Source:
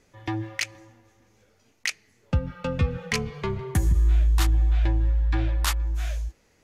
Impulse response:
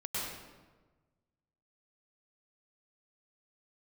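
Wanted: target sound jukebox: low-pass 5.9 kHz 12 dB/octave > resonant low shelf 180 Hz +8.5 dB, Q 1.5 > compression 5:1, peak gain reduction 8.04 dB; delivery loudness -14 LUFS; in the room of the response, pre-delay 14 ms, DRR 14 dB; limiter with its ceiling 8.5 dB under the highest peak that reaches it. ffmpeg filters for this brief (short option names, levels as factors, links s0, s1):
-filter_complex "[0:a]alimiter=limit=0.0891:level=0:latency=1,asplit=2[s0][s1];[1:a]atrim=start_sample=2205,adelay=14[s2];[s1][s2]afir=irnorm=-1:irlink=0,volume=0.126[s3];[s0][s3]amix=inputs=2:normalize=0,lowpass=5900,lowshelf=f=180:t=q:w=1.5:g=8.5,acompressor=threshold=0.112:ratio=5,volume=3.76"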